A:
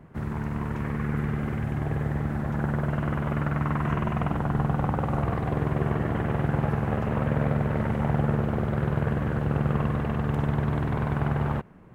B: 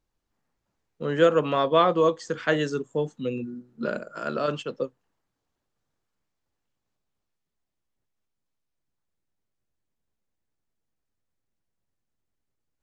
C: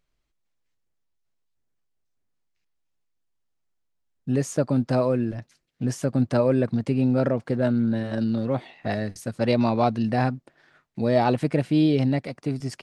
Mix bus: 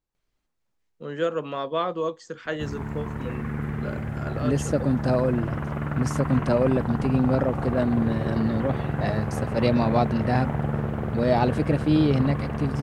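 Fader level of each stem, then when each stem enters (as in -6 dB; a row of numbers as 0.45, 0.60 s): -2.0, -6.5, -1.0 dB; 2.45, 0.00, 0.15 s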